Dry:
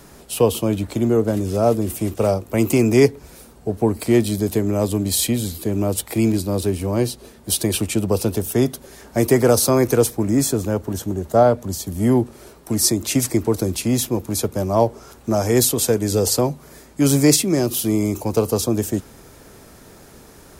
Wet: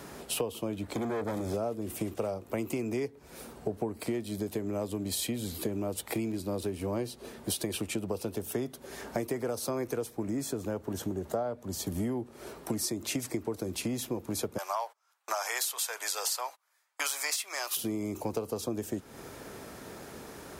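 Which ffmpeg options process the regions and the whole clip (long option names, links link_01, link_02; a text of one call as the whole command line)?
ffmpeg -i in.wav -filter_complex "[0:a]asettb=1/sr,asplit=3[link_01][link_02][link_03];[link_01]atrim=end=0.934[link_04];[link_02]atrim=start=0.93:end=1.54,asetpts=PTS-STARTPTS,afade=type=in:duration=0.004:curve=qsin,afade=type=out:start_time=0.606:duration=0.004:curve=qsin,asoftclip=type=hard:threshold=-21.5dB,asuperstop=centerf=2800:order=12:qfactor=7.1[link_05];[link_03]atrim=start=1.536[link_06];[link_04][link_05]acrossfade=duration=0.004:curve1=hsin:curve2=qsin[link_07];[link_07][link_06]acrossfade=duration=0.004:curve1=qsin:curve2=hsin,asettb=1/sr,asplit=3[link_08][link_09][link_10];[link_08]atrim=end=14.584[link_11];[link_09]atrim=start=14.58:end=17.77,asetpts=PTS-STARTPTS,afade=type=in:duration=0.004:curve=qsin,afade=type=out:start_time=3.186:duration=0.004:curve=qsin,agate=range=-32dB:threshold=-32dB:ratio=16:release=100:detection=peak,highpass=frequency=920:width=0.5412,highpass=frequency=920:width=1.3066,acontrast=88[link_12];[link_10]atrim=start=17.766[link_13];[link_11][link_12]acrossfade=duration=0.004:curve1=hsin:curve2=qsin[link_14];[link_14][link_13]acrossfade=duration=0.004:curve1=qsin:curve2=hsin,highpass=frequency=120:poles=1,bass=frequency=250:gain=-2,treble=frequency=4000:gain=-5,acompressor=threshold=-31dB:ratio=12,volume=1.5dB" out.wav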